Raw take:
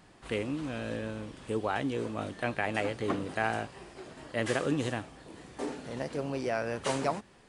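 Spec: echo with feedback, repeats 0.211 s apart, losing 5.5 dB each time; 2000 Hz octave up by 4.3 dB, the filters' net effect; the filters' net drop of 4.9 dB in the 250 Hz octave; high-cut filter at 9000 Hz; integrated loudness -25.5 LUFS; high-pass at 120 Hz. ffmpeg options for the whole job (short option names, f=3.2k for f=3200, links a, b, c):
-af "highpass=120,lowpass=9k,equalizer=f=250:t=o:g=-6,equalizer=f=2k:t=o:g=5.5,aecho=1:1:211|422|633|844|1055|1266|1477:0.531|0.281|0.149|0.079|0.0419|0.0222|0.0118,volume=7dB"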